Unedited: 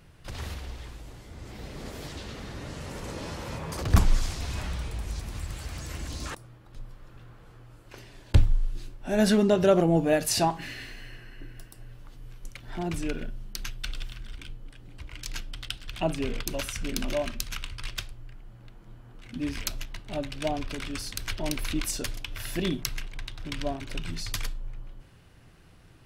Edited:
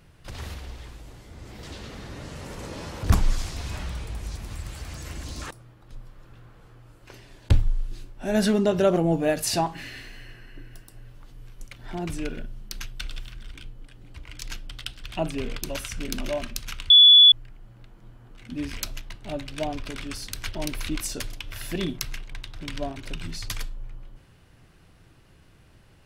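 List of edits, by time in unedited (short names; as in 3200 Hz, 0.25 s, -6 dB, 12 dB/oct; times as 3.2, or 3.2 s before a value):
1.63–2.08 cut
3.48–3.87 cut
17.74–18.16 bleep 3430 Hz -8.5 dBFS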